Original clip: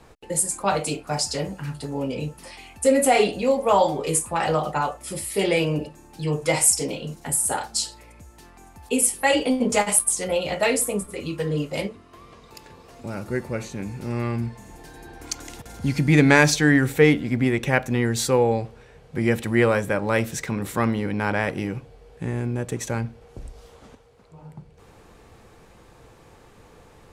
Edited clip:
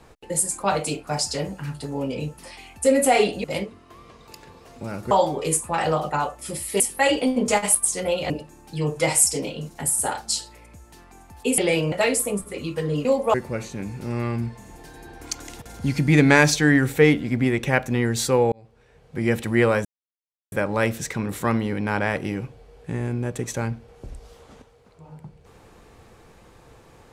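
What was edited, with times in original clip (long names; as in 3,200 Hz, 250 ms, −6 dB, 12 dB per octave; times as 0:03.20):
0:03.44–0:03.73: swap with 0:11.67–0:13.34
0:05.42–0:05.76: swap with 0:09.04–0:10.54
0:18.52–0:19.35: fade in
0:19.85: splice in silence 0.67 s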